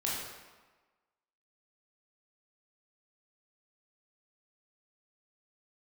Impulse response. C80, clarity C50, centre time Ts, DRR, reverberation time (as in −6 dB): 2.5 dB, 0.0 dB, 81 ms, −6.0 dB, 1.3 s